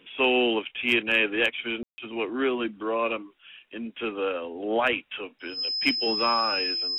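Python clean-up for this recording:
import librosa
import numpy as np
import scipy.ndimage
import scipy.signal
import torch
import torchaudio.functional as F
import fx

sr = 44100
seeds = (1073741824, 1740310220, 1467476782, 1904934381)

y = fx.fix_declip(x, sr, threshold_db=-11.0)
y = fx.notch(y, sr, hz=5100.0, q=30.0)
y = fx.fix_ambience(y, sr, seeds[0], print_start_s=3.23, print_end_s=3.73, start_s=1.83, end_s=1.98)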